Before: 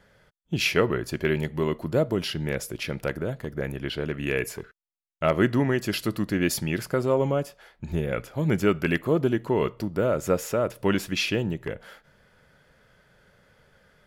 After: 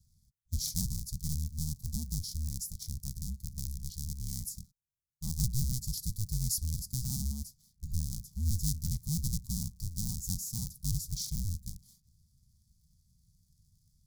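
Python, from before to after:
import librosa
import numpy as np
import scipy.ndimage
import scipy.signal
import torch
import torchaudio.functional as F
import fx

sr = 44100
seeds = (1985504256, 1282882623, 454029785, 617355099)

y = fx.cycle_switch(x, sr, every=2, mode='inverted')
y = scipy.signal.sosfilt(scipy.signal.cheby2(4, 40, [310.0, 2900.0], 'bandstop', fs=sr, output='sos'), y)
y = F.gain(torch.from_numpy(y), -1.5).numpy()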